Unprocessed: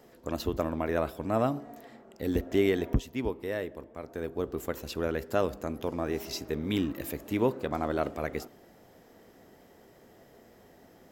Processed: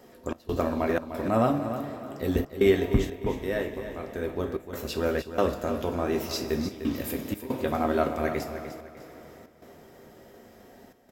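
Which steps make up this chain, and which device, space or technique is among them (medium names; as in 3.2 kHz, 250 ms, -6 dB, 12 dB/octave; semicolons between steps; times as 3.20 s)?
two-slope reverb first 0.31 s, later 4.6 s, from -18 dB, DRR 3 dB; trance gate with a delay (trance gate "xx.xxx.xxxxxx" 92 bpm -24 dB; feedback delay 301 ms, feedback 35%, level -10.5 dB); trim +2.5 dB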